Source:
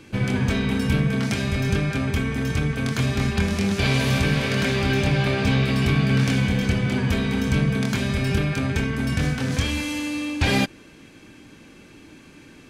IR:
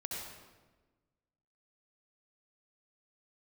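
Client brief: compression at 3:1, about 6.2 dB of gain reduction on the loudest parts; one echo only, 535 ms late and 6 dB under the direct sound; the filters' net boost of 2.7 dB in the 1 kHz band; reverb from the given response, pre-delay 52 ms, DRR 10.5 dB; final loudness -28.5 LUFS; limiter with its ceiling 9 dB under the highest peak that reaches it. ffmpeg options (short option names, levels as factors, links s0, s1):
-filter_complex "[0:a]equalizer=f=1000:t=o:g=3.5,acompressor=threshold=0.0631:ratio=3,alimiter=limit=0.0841:level=0:latency=1,aecho=1:1:535:0.501,asplit=2[s0][s1];[1:a]atrim=start_sample=2205,adelay=52[s2];[s1][s2]afir=irnorm=-1:irlink=0,volume=0.266[s3];[s0][s3]amix=inputs=2:normalize=0,volume=1.06"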